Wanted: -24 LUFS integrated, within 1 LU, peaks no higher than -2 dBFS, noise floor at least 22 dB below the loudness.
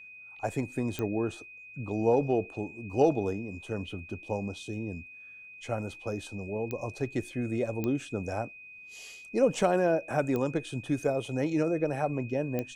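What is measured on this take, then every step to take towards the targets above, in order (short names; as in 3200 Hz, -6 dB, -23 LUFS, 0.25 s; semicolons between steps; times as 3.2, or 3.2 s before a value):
clicks 5; steady tone 2500 Hz; tone level -46 dBFS; loudness -31.0 LUFS; peak -12.0 dBFS; loudness target -24.0 LUFS
-> de-click; notch 2500 Hz, Q 30; gain +7 dB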